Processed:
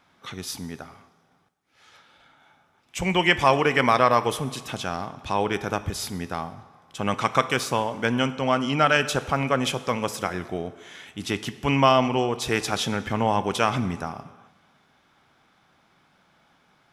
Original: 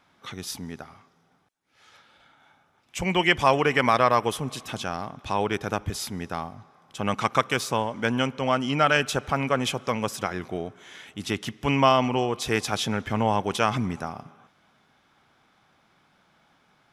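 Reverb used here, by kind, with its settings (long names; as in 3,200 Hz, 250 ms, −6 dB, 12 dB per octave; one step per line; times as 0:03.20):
dense smooth reverb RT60 1.1 s, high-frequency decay 0.9×, DRR 13 dB
level +1 dB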